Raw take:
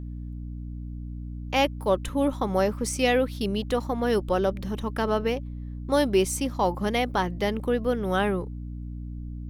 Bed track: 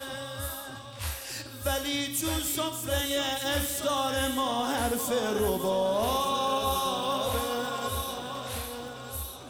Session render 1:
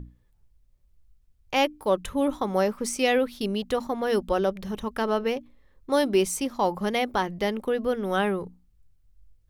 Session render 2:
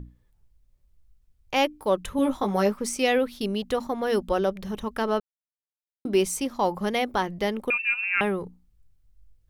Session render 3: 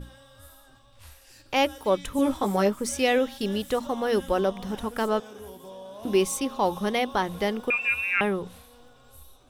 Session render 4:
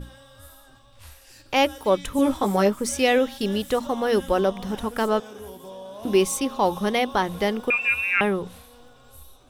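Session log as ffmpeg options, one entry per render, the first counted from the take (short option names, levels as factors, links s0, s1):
-af "bandreject=f=60:t=h:w=6,bandreject=f=120:t=h:w=6,bandreject=f=180:t=h:w=6,bandreject=f=240:t=h:w=6,bandreject=f=300:t=h:w=6"
-filter_complex "[0:a]asettb=1/sr,asplit=3[s0][s1][s2];[s0]atrim=end=2.174[s3];[s1]atrim=start=2.17:end=2.74,asetpts=PTS-STARTPTS,afade=t=in:d=0.004:c=qsin,afade=t=out:st=0.566:d=0.004:c=qsin,asplit=2[s4][s5];[s5]adelay=15,volume=0.668[s6];[s4][s6]amix=inputs=2:normalize=0,atrim=end_sample=25137[s7];[s2]atrim=start=2.736[s8];[s3][s7]acrossfade=d=0.004:c1=hsin:c2=qsin[s9];[s9][s8]acrossfade=d=0.004:c1=qsin:c2=hsin,asettb=1/sr,asplit=3[s10][s11][s12];[s10]atrim=end=7.704[s13];[s11]atrim=start=7.7:end=8.21,asetpts=PTS-STARTPTS,afade=t=in:d=0.004:c=qsin,afade=t=out:st=0.506:d=0.004:c=qsin,lowpass=f=2500:t=q:w=0.5098,lowpass=f=2500:t=q:w=0.6013,lowpass=f=2500:t=q:w=0.9,lowpass=f=2500:t=q:w=2.563,afreqshift=-2900[s14];[s12]atrim=start=8.206[s15];[s13][s14]acrossfade=d=0.004:c1=hsin:c2=qsin[s16];[s16][s15]acrossfade=d=0.004:c1=qsin:c2=hsin,asplit=3[s17][s18][s19];[s17]atrim=end=5.2,asetpts=PTS-STARTPTS,afade=t=out:st=5.196:d=0.004:c=hsin[s20];[s18]atrim=start=5.2:end=6.05,asetpts=PTS-STARTPTS,volume=0[s21];[s19]atrim=start=6.05,asetpts=PTS-STARTPTS,afade=t=in:d=0.004:c=hsin[s22];[s20][s21][s22]concat=n=3:v=0:a=1"
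-filter_complex "[1:a]volume=0.168[s0];[0:a][s0]amix=inputs=2:normalize=0"
-af "volume=1.41"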